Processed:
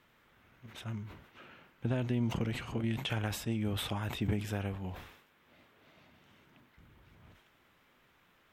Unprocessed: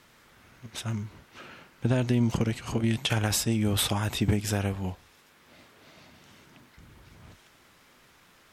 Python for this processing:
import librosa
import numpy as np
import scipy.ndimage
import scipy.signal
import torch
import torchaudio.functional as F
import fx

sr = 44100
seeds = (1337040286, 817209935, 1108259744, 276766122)

y = fx.band_shelf(x, sr, hz=7100.0, db=-9.0, octaves=1.7)
y = fx.sustainer(y, sr, db_per_s=78.0)
y = y * 10.0 ** (-8.0 / 20.0)